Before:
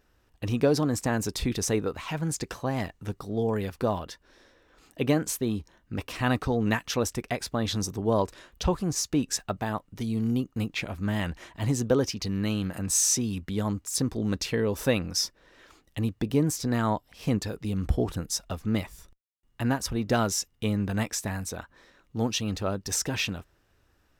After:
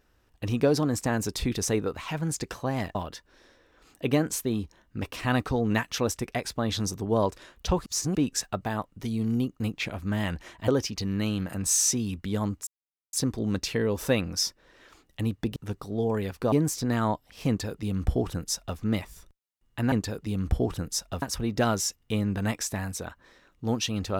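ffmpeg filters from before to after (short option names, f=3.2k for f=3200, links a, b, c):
-filter_complex "[0:a]asplit=10[a][b][c][d][e][f][g][h][i][j];[a]atrim=end=2.952[k];[b]atrim=start=3.908:end=8.822[l];[c]atrim=start=8.818:end=9.112,asetpts=PTS-STARTPTS,areverse[m];[d]atrim=start=9.108:end=11.642[n];[e]atrim=start=11.918:end=13.91,asetpts=PTS-STARTPTS,afade=t=out:st=1.988:d=0.004:c=hsin,apad=pad_dur=0.46[o];[f]atrim=start=13.91:end=16.342,asetpts=PTS-STARTPTS,afade=t=in:d=0.004:c=hsin[p];[g]atrim=start=2.948:end=3.912[q];[h]atrim=start=16.338:end=19.742[r];[i]atrim=start=17.298:end=18.602[s];[j]atrim=start=19.738[t];[k][l]acrossfade=d=0.004:c1=hsin:c2=hsin[u];[u][m]acrossfade=d=0.004:c1=hsin:c2=hsin[v];[v][n]acrossfade=d=0.004:c1=hsin:c2=hsin[w];[o][p]concat=n=2:v=0:a=1[x];[w][x]acrossfade=d=0.004:c1=hsin:c2=hsin[y];[y][q]acrossfade=d=0.004:c1=hsin:c2=hsin[z];[z][r]acrossfade=d=0.004:c1=hsin:c2=hsin[aa];[aa][s]acrossfade=d=0.004:c1=hsin:c2=hsin[ab];[ab][t]acrossfade=d=0.004:c1=hsin:c2=hsin"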